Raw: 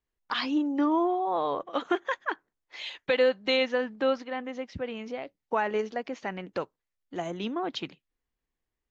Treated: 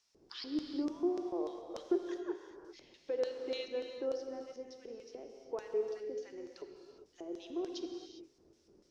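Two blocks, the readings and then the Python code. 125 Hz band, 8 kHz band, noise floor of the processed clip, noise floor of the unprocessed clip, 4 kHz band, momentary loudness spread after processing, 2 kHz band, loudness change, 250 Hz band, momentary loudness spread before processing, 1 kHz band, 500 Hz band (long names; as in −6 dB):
below −15 dB, can't be measured, −70 dBFS, below −85 dBFS, −14.0 dB, 16 LU, −22.0 dB, −10.0 dB, −8.5 dB, 14 LU, −20.0 dB, −8.5 dB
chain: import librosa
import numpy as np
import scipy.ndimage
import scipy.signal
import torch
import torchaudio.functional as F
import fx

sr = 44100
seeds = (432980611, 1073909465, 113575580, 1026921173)

y = scipy.signal.sosfilt(scipy.signal.butter(4, 250.0, 'highpass', fs=sr, output='sos'), x)
y = fx.dmg_noise_colour(y, sr, seeds[0], colour='brown', level_db=-44.0)
y = fx.filter_lfo_bandpass(y, sr, shape='square', hz=3.4, low_hz=380.0, high_hz=5500.0, q=4.4)
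y = fx.rev_gated(y, sr, seeds[1], gate_ms=430, shape='flat', drr_db=3.5)
y = y * 10.0 ** (-1.0 / 20.0)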